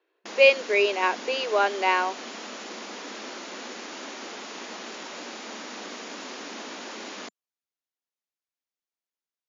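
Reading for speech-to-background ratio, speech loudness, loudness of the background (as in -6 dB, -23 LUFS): 15.0 dB, -22.5 LUFS, -37.5 LUFS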